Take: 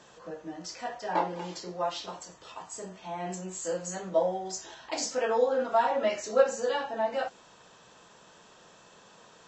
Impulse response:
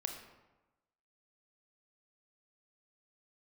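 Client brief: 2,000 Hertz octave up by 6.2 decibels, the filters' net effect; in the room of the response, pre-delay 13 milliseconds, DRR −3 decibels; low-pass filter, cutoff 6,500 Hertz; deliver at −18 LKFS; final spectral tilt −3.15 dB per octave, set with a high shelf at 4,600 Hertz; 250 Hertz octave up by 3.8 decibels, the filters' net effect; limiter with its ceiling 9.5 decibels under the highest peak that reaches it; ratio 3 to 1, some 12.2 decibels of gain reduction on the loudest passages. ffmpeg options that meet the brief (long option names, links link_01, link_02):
-filter_complex "[0:a]lowpass=6500,equalizer=frequency=250:width_type=o:gain=5,equalizer=frequency=2000:width_type=o:gain=7,highshelf=frequency=4600:gain=5.5,acompressor=threshold=-31dB:ratio=3,alimiter=level_in=3dB:limit=-24dB:level=0:latency=1,volume=-3dB,asplit=2[link_01][link_02];[1:a]atrim=start_sample=2205,adelay=13[link_03];[link_02][link_03]afir=irnorm=-1:irlink=0,volume=3dB[link_04];[link_01][link_04]amix=inputs=2:normalize=0,volume=14dB"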